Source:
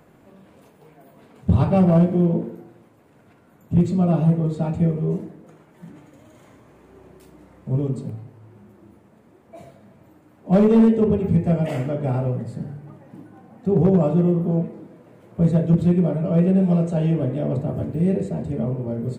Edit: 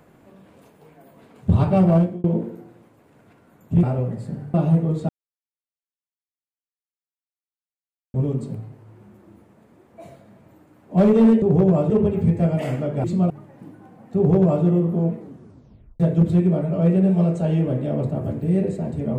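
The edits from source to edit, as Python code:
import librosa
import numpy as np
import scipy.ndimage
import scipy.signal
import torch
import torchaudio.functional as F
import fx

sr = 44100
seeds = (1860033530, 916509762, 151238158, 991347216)

y = fx.edit(x, sr, fx.fade_out_span(start_s=1.95, length_s=0.29),
    fx.swap(start_s=3.83, length_s=0.26, other_s=12.11, other_length_s=0.71),
    fx.silence(start_s=4.64, length_s=3.05),
    fx.duplicate(start_s=13.68, length_s=0.48, to_s=10.97),
    fx.tape_stop(start_s=14.72, length_s=0.8), tone=tone)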